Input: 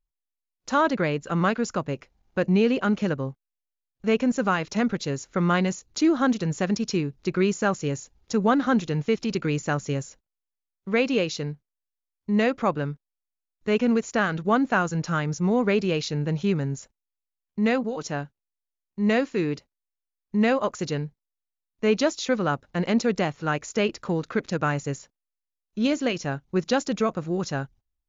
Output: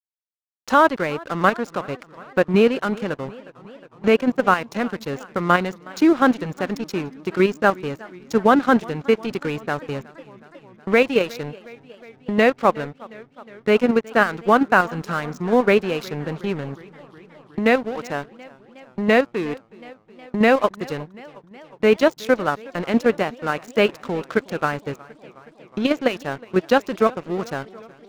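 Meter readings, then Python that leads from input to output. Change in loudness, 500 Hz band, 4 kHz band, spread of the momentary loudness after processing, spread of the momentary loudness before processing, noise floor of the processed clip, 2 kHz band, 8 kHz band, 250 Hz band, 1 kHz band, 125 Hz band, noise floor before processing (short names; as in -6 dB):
+4.5 dB, +6.0 dB, +2.5 dB, 16 LU, 11 LU, -54 dBFS, +6.5 dB, n/a, +2.0 dB, +7.0 dB, -2.5 dB, under -85 dBFS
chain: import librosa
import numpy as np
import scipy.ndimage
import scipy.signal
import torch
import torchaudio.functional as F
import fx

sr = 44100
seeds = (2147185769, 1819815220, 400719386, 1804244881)

p1 = fx.recorder_agc(x, sr, target_db=-16.0, rise_db_per_s=11.0, max_gain_db=30)
p2 = fx.bass_treble(p1, sr, bass_db=-7, treble_db=-10)
p3 = fx.level_steps(p2, sr, step_db=23)
p4 = p2 + (p3 * 10.0 ** (1.0 / 20.0))
p5 = np.sign(p4) * np.maximum(np.abs(p4) - 10.0 ** (-36.0 / 20.0), 0.0)
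p6 = fx.echo_warbled(p5, sr, ms=365, feedback_pct=73, rate_hz=2.8, cents=101, wet_db=-22.5)
y = p6 * 10.0 ** (3.0 / 20.0)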